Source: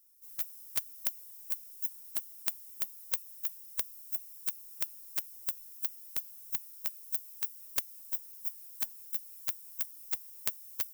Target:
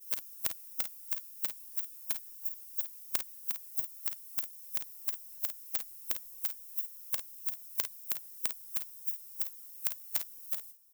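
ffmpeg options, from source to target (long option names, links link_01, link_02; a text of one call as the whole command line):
ffmpeg -i in.wav -af "areverse,aecho=1:1:38|51:0.178|0.335" out.wav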